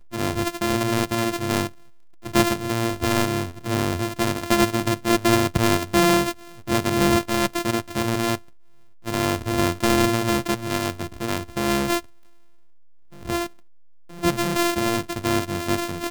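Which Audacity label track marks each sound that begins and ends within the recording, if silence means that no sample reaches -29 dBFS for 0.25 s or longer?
2.260000	6.320000	sound
6.680000	8.350000	sound
9.060000	12.000000	sound
13.260000	13.460000	sound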